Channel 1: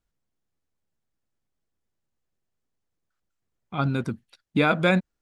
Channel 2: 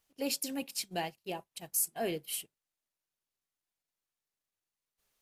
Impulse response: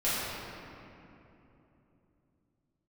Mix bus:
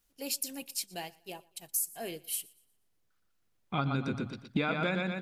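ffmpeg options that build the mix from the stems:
-filter_complex "[0:a]lowpass=4100,bandreject=frequency=60:width_type=h:width=6,bandreject=frequency=120:width_type=h:width=6,volume=1dB,asplit=2[link_01][link_02];[link_02]volume=-5dB[link_03];[1:a]volume=-6dB,asplit=2[link_04][link_05];[link_05]volume=-24dB[link_06];[link_03][link_06]amix=inputs=2:normalize=0,aecho=0:1:119|238|357|476|595:1|0.34|0.116|0.0393|0.0134[link_07];[link_01][link_04][link_07]amix=inputs=3:normalize=0,highshelf=frequency=3900:gain=10.5,acompressor=threshold=-27dB:ratio=10"

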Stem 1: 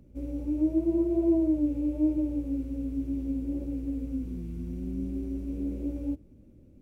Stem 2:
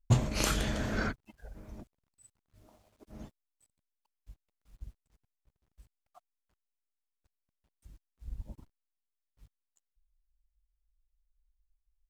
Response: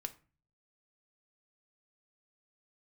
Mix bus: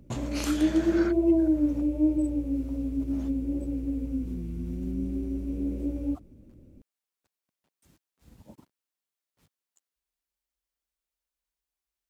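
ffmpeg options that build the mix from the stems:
-filter_complex "[0:a]volume=2dB[link_01];[1:a]acontrast=81,highpass=190,acompressor=threshold=-37dB:ratio=2,volume=-2dB[link_02];[link_01][link_02]amix=inputs=2:normalize=0"

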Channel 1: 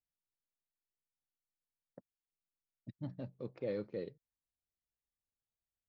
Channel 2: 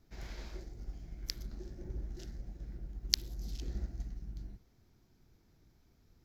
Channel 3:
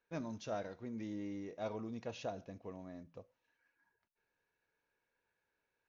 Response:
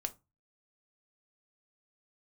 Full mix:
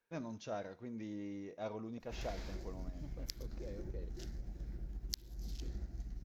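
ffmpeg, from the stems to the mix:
-filter_complex "[0:a]acompressor=threshold=-46dB:ratio=2.5,volume=-4.5dB,asplit=2[link_01][link_02];[1:a]acompressor=threshold=-42dB:ratio=4,adelay=2000,volume=2dB[link_03];[2:a]volume=-1.5dB[link_04];[link_02]apad=whole_len=259685[link_05];[link_04][link_05]sidechaincompress=threshold=-53dB:ratio=8:attack=5.3:release=301[link_06];[link_01][link_03][link_06]amix=inputs=3:normalize=0"

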